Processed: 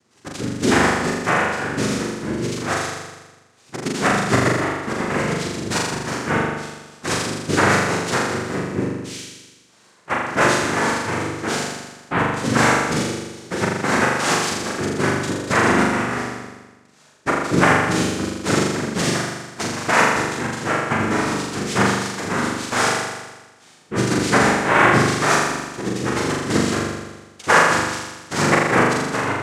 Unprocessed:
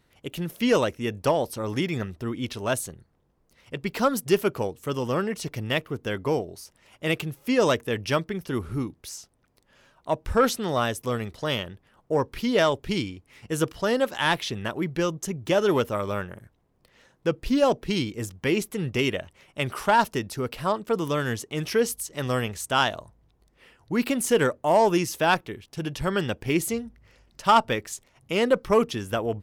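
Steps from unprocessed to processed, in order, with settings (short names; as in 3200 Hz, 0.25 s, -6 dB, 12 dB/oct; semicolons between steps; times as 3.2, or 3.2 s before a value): noise vocoder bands 3; on a send: flutter echo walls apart 7 m, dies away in 1.2 s; on the sum: gain +1.5 dB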